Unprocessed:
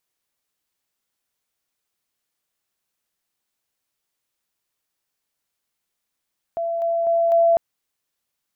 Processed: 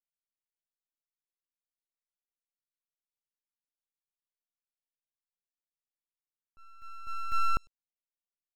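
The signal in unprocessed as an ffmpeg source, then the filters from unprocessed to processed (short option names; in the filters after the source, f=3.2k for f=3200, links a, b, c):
-f lavfi -i "aevalsrc='pow(10,(-21.5+3*floor(t/0.25))/20)*sin(2*PI*673*t)':d=1:s=44100"
-filter_complex "[0:a]agate=range=-33dB:threshold=-10dB:ratio=3:detection=peak,asplit=2[a][b];[b]adelay=100,highpass=300,lowpass=3.4k,asoftclip=type=hard:threshold=-30dB,volume=-25dB[c];[a][c]amix=inputs=2:normalize=0,aeval=exprs='abs(val(0))':c=same"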